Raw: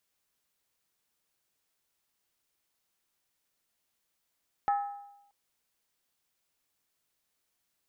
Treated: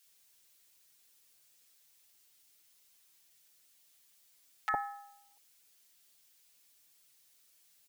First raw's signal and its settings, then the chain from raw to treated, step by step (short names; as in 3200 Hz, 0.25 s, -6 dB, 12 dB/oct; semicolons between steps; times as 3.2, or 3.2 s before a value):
skin hit, lowest mode 809 Hz, decay 0.88 s, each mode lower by 9.5 dB, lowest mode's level -22.5 dB
high shelf 2000 Hz +11.5 dB; comb 6.9 ms, depth 86%; bands offset in time highs, lows 60 ms, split 1100 Hz